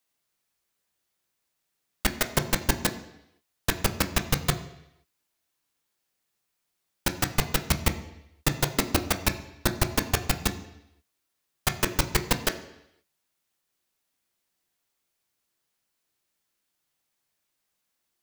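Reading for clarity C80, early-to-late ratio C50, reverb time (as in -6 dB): 14.5 dB, 12.0 dB, 0.80 s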